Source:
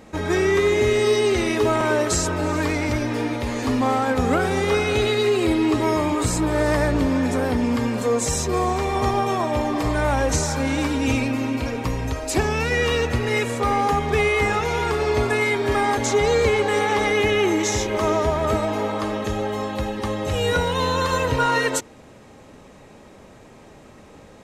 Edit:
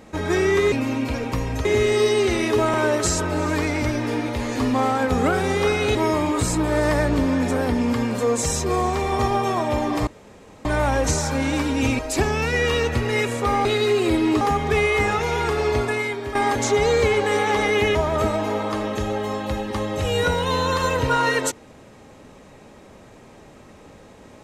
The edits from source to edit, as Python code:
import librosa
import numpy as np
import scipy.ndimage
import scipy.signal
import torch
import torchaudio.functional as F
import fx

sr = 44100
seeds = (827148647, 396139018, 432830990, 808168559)

y = fx.edit(x, sr, fx.move(start_s=5.02, length_s=0.76, to_s=13.83),
    fx.insert_room_tone(at_s=9.9, length_s=0.58),
    fx.move(start_s=11.24, length_s=0.93, to_s=0.72),
    fx.fade_out_to(start_s=15.09, length_s=0.68, floor_db=-10.5),
    fx.cut(start_s=17.37, length_s=0.87), tone=tone)